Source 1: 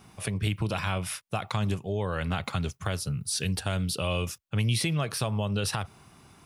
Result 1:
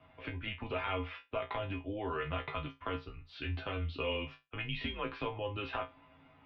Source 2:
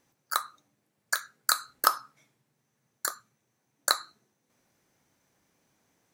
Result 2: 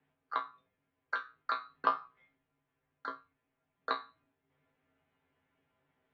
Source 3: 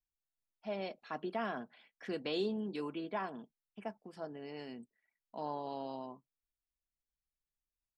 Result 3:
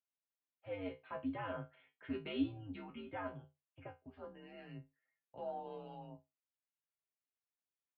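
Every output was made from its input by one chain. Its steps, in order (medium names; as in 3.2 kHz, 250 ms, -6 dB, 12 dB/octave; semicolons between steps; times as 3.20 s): chord resonator B2 fifth, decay 0.21 s; mistuned SSB -100 Hz 200–3200 Hz; trim +7 dB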